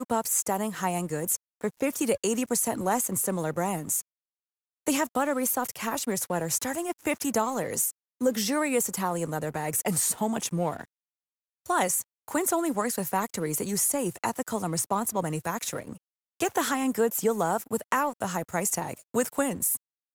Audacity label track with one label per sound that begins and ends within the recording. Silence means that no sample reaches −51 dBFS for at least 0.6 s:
4.870000	10.850000	sound